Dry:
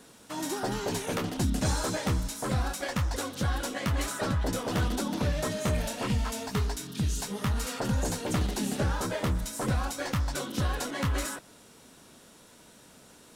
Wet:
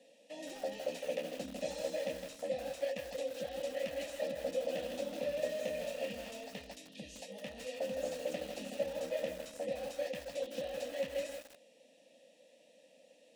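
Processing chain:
formant filter e
parametric band 9,500 Hz +5 dB 2.3 octaves
phaser with its sweep stopped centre 400 Hz, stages 6
feedback echo at a low word length 161 ms, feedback 35%, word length 9 bits, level −6 dB
level +7 dB

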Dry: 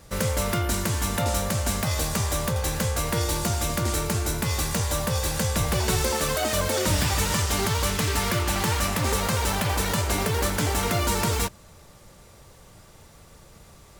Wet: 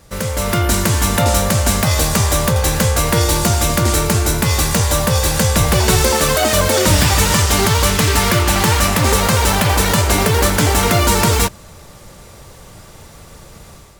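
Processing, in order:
automatic gain control gain up to 8 dB
level +3 dB

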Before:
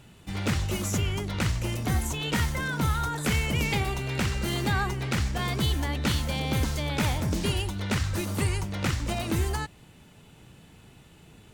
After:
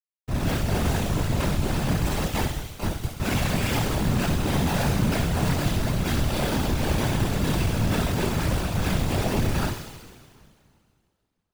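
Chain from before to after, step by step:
0:02.24–0:03.20: first difference
comparator with hysteresis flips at −29 dBFS
coupled-rooms reverb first 0.43 s, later 2.4 s, from −21 dB, DRR −7 dB
soft clipping −18.5 dBFS, distortion −14 dB
on a send: delay with a high-pass on its return 66 ms, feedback 74%, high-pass 2,800 Hz, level −5.5 dB
on the sum: random phases in short frames

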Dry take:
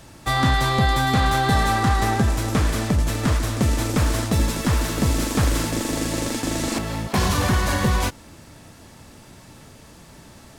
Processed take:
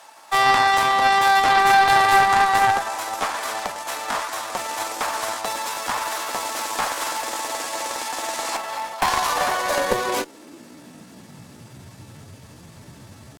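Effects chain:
high-pass filter sweep 830 Hz → 98 Hz, 0:07.30–0:09.42
tempo change 0.79×
harmonic generator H 4 −8 dB, 6 −16 dB, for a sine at −6 dBFS

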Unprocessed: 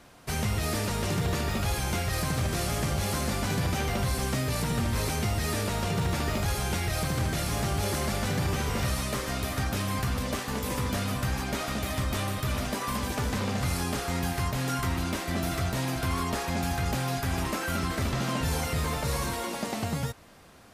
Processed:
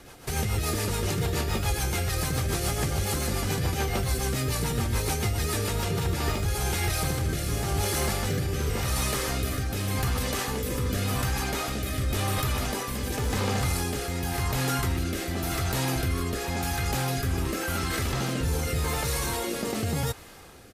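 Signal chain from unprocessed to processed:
high-shelf EQ 11,000 Hz +8 dB
comb filter 2.4 ms, depth 35%
in parallel at −2.5 dB: compressor whose output falls as the input rises −34 dBFS, ratio −1
on the sum: rotating-speaker cabinet horn 7 Hz, later 0.9 Hz, at 0:05.66

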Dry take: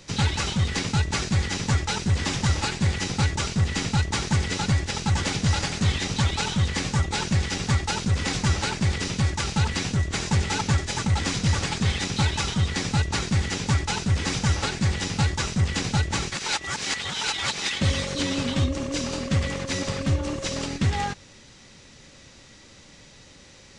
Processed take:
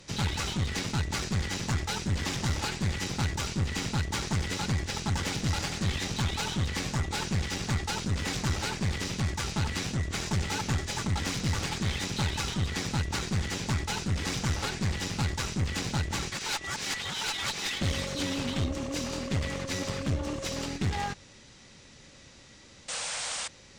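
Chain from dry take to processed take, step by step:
asymmetric clip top −28.5 dBFS
sound drawn into the spectrogram noise, 0:22.88–0:23.48, 460–9,400 Hz −31 dBFS
level −3.5 dB

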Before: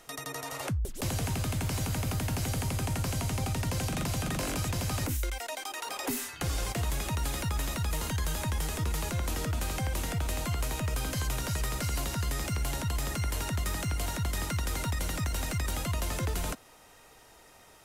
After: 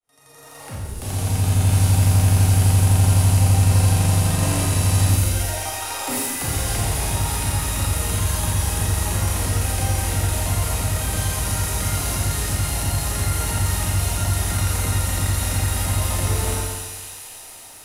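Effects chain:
fade in at the beginning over 1.70 s
thirty-one-band graphic EQ 100 Hz +8 dB, 800 Hz +4 dB, 10,000 Hz +9 dB
delay with a high-pass on its return 275 ms, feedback 72%, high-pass 2,700 Hz, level −6 dB
four-comb reverb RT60 1.3 s, combs from 28 ms, DRR −6 dB
feedback echo at a low word length 138 ms, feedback 35%, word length 8 bits, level −9 dB

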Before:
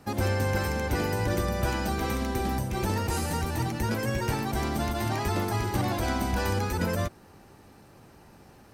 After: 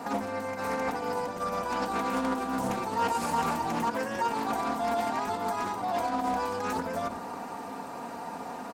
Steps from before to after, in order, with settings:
high-pass filter 140 Hz 12 dB per octave
parametric band 7,400 Hz +4 dB 0.36 octaves
compressor whose output falls as the input rises −35 dBFS, ratio −0.5
parametric band 860 Hz +13 dB 1.5 octaves
convolution reverb RT60 0.45 s, pre-delay 3 ms, DRR 7.5 dB
brickwall limiter −21.5 dBFS, peak gain reduction 9 dB
comb filter 4.3 ms, depth 59%
highs frequency-modulated by the lows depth 0.26 ms

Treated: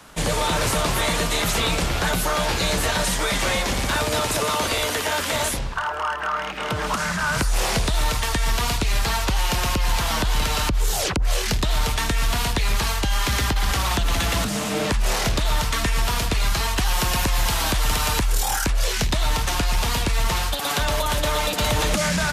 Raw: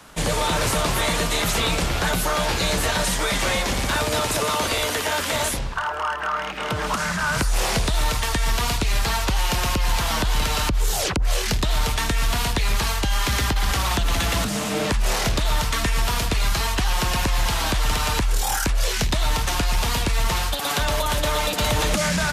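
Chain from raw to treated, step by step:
0:16.76–0:18.43: high-shelf EQ 9,100 Hz +7 dB

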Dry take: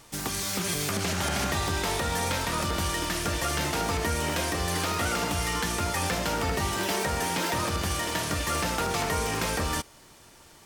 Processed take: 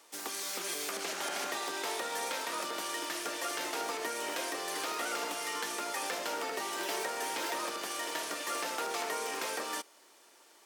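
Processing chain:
high-pass filter 320 Hz 24 dB per octave
level −6.5 dB

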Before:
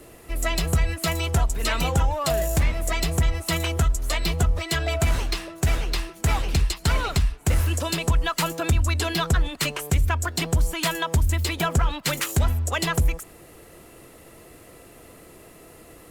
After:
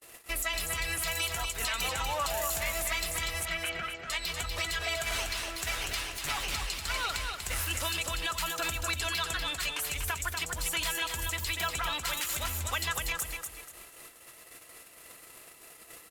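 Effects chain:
0:05.83–0:06.42: lower of the sound and its delayed copy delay 7.1 ms
noise gate −45 dBFS, range −40 dB
tilt shelving filter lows −10 dB, about 710 Hz
downward compressor 4 to 1, threshold −30 dBFS, peak gain reduction 14.5 dB
brickwall limiter −21.5 dBFS, peak gain reduction 10 dB
0:03.45–0:04.10: loudspeaker in its box 130–3,800 Hz, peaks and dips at 180 Hz +7 dB, 670 Hz +5 dB, 980 Hz −7 dB, 1,500 Hz +6 dB, 2,200 Hz +3 dB, 3,700 Hz −8 dB
on a send: repeating echo 242 ms, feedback 30%, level −5 dB

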